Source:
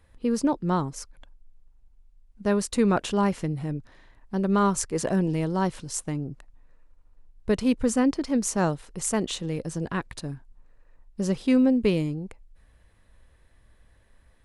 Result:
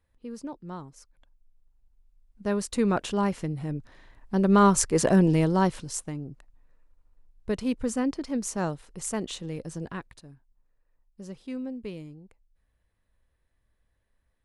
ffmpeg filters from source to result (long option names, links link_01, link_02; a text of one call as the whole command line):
ffmpeg -i in.wav -af "volume=4.5dB,afade=type=in:start_time=1:duration=1.86:silence=0.266073,afade=type=in:start_time=3.57:duration=1.27:silence=0.446684,afade=type=out:start_time=5.37:duration=0.75:silence=0.334965,afade=type=out:start_time=9.82:duration=0.41:silence=0.316228" out.wav